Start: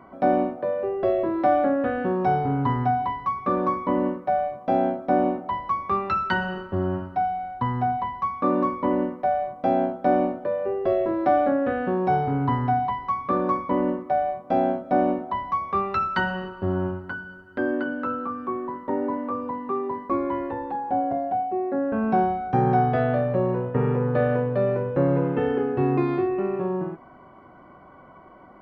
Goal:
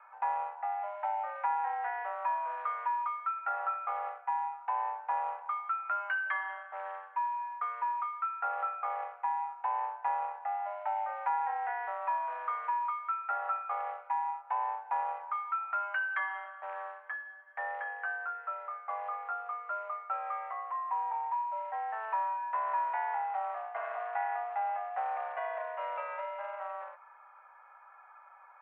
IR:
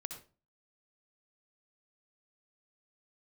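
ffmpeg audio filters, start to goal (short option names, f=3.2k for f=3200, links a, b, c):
-af "acrusher=bits=5:mode=log:mix=0:aa=0.000001,highpass=f=530:t=q:w=0.5412,highpass=f=530:t=q:w=1.307,lowpass=f=2.3k:t=q:w=0.5176,lowpass=f=2.3k:t=q:w=0.7071,lowpass=f=2.3k:t=q:w=1.932,afreqshift=220,acompressor=threshold=-26dB:ratio=2,volume=-5.5dB"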